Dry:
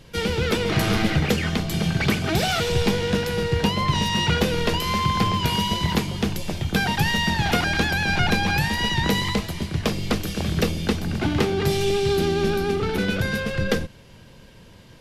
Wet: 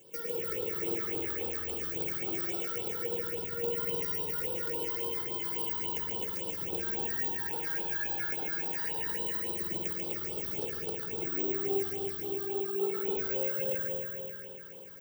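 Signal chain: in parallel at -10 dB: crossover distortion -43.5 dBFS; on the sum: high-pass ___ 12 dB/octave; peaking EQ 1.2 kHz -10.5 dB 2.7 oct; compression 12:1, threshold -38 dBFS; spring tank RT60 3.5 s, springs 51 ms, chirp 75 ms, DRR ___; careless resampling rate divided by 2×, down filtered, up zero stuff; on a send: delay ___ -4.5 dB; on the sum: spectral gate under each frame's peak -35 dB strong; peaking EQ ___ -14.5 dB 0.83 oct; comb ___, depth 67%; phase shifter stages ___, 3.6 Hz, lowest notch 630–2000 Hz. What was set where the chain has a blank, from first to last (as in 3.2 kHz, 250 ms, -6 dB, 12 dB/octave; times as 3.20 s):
460 Hz, -3.5 dB, 142 ms, 3.9 kHz, 2.3 ms, 6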